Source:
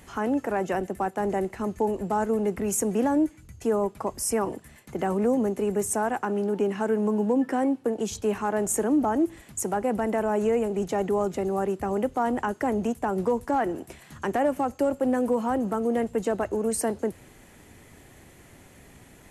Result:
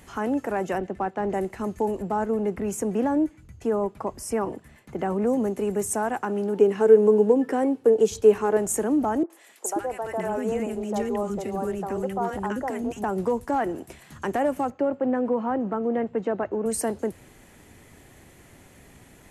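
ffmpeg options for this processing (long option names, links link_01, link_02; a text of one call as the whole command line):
ffmpeg -i in.wav -filter_complex "[0:a]asettb=1/sr,asplit=3[link_01][link_02][link_03];[link_01]atrim=end=0.784[link_04];[link_02]atrim=start=0.78:end=1.33,asetpts=PTS-STARTPTS,afade=type=in:duration=0.004:curve=qsin,afade=type=out:start_time=0.546:duration=0.004:curve=qsin,lowpass=3900[link_05];[link_03]atrim=start=1.326[link_06];[link_04][link_05]acrossfade=duration=0.004:curve1=hsin:curve2=qsin[link_07];[link_07][link_06]acrossfade=duration=0.004:curve1=qsin:curve2=hsin,asettb=1/sr,asplit=3[link_08][link_09][link_10];[link_08]atrim=end=2.024[link_11];[link_09]atrim=start=2.02:end=5.27,asetpts=PTS-STARTPTS,afade=type=in:duration=0.004:curve=qsin,afade=type=out:start_time=3.246:duration=0.004:curve=qsin,highshelf=frequency=4400:gain=-9.5[link_12];[link_10]atrim=start=5.266[link_13];[link_11][link_12]acrossfade=duration=0.004:curve1=hsin:curve2=qsin[link_14];[link_14][link_13]acrossfade=duration=0.004:curve1=qsin:curve2=hsin,asettb=1/sr,asplit=3[link_15][link_16][link_17];[link_15]atrim=end=6.574[link_18];[link_16]atrim=start=6.57:end=8.57,asetpts=PTS-STARTPTS,afade=type=in:duration=0.004:curve=qsin,afade=type=out:start_time=1.996:duration=0.004:curve=qsin,equalizer=frequency=440:width_type=o:width=0.25:gain=13[link_19];[link_17]atrim=start=8.566[link_20];[link_18][link_19]acrossfade=duration=0.004:curve1=hsin:curve2=qsin[link_21];[link_21][link_20]acrossfade=duration=0.004:curve1=qsin:curve2=hsin,asettb=1/sr,asplit=3[link_22][link_23][link_24];[link_22]atrim=end=9.234[link_25];[link_23]atrim=start=9.23:end=13.04,asetpts=PTS-STARTPTS,afade=type=in:duration=0.004:curve=qsin,afade=type=out:start_time=3.806:duration=0.004:curve=qsin,acrossover=split=400|1300[link_26][link_27][link_28];[link_28]adelay=70[link_29];[link_26]adelay=530[link_30];[link_30][link_27][link_29]amix=inputs=3:normalize=0,atrim=end_sample=168021[link_31];[link_24]atrim=start=13.036[link_32];[link_25][link_31]acrossfade=duration=0.004:curve1=hsin:curve2=qsin[link_33];[link_33][link_32]acrossfade=duration=0.004:curve1=qsin:curve2=hsin,asettb=1/sr,asplit=3[link_34][link_35][link_36];[link_34]atrim=end=14.704[link_37];[link_35]atrim=start=14.7:end=16.66,asetpts=PTS-STARTPTS,afade=type=in:duration=0.004:curve=qsin,afade=type=out:start_time=1.956:duration=0.004:curve=qsin,highpass=120,lowpass=2300[link_38];[link_36]atrim=start=16.656[link_39];[link_37][link_38]acrossfade=duration=0.004:curve1=hsin:curve2=qsin[link_40];[link_40][link_39]acrossfade=duration=0.004:curve1=qsin:curve2=hsin" out.wav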